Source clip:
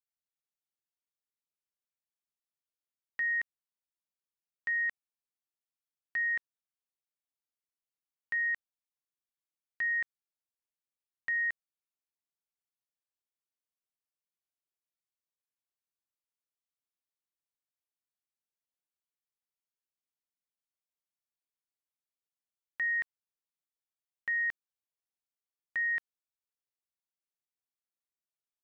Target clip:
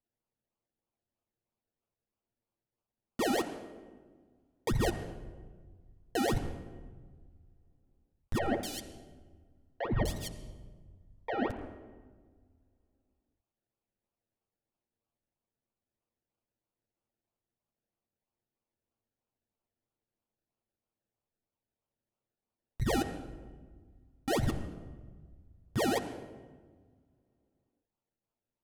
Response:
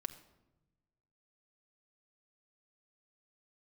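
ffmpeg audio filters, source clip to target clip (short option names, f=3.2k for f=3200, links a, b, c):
-filter_complex "[0:a]highshelf=f=2.4k:g=-6.5,acrusher=samples=32:mix=1:aa=0.000001:lfo=1:lforange=19.2:lforate=3.1,asoftclip=type=tanh:threshold=-29.5dB,asettb=1/sr,asplit=3[a][b][c];[a]atrim=end=8.384[d];[b]atrim=start=8.38:end=11.5,asetpts=PTS-STARTPTS,afade=t=in:d=0.004:c=qsin,afade=t=out:st=3.116:d=0.004:c=qsin,acrossover=split=480|2600[e][f][g];[e]adelay=50[h];[g]adelay=250[i];[h][f][i]amix=inputs=3:normalize=0,atrim=end_sample=137592[j];[c]atrim=start=11.496[k];[d][j]acrossfade=d=0.004:c1=hsin:c2=qsin[l];[l][k]acrossfade=d=0.004:c1=qsin:c2=hsin[m];[1:a]atrim=start_sample=2205,asetrate=24696,aresample=44100[n];[m][n]afir=irnorm=-1:irlink=0,volume=4.5dB"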